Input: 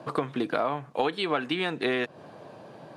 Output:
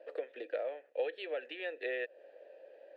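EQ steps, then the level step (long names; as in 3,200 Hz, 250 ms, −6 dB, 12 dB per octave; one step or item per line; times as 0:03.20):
formant filter e
high-pass filter 350 Hz 24 dB per octave
0.0 dB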